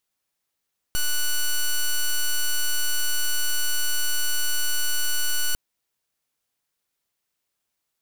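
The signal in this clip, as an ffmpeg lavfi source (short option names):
-f lavfi -i "aevalsrc='0.0891*(2*lt(mod(1480*t,1),0.06)-1)':d=4.6:s=44100"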